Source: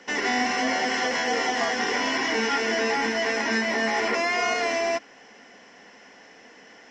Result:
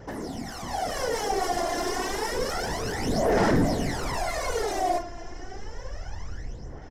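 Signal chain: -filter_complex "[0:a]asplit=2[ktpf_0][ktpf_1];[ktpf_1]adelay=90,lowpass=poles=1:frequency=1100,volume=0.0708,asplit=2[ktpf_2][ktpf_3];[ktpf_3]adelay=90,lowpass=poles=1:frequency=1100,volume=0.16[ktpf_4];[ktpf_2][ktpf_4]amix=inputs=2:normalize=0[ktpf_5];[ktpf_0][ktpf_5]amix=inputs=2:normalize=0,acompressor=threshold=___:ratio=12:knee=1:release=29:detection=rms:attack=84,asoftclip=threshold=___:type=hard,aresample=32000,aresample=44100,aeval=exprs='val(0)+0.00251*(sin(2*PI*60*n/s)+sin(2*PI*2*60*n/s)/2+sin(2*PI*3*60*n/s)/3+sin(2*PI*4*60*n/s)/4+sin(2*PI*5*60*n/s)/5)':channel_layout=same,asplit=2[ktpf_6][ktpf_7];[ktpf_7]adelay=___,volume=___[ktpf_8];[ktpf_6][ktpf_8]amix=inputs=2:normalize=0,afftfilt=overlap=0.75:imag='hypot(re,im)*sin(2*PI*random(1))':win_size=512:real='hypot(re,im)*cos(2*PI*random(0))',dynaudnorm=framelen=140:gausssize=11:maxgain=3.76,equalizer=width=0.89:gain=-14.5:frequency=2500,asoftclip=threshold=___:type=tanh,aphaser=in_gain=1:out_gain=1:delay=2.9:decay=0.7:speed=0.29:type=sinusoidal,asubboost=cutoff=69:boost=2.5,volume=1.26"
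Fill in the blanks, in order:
0.0224, 0.0282, 36, 0.316, 0.0562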